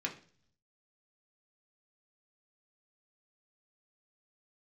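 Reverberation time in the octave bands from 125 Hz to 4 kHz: 1.0, 0.70, 0.50, 0.40, 0.45, 0.55 seconds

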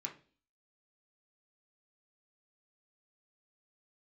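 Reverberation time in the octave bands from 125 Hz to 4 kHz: 0.45, 0.55, 0.45, 0.35, 0.35, 0.45 seconds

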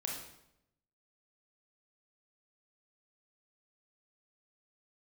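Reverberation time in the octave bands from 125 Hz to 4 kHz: 1.1, 0.95, 0.85, 0.75, 0.70, 0.65 seconds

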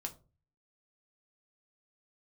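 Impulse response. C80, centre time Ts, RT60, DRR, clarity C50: 22.0 dB, 7 ms, 0.35 s, 3.0 dB, 16.5 dB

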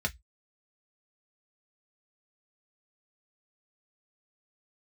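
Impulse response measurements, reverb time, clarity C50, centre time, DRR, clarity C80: 0.10 s, 26.0 dB, 5 ms, 2.0 dB, 39.0 dB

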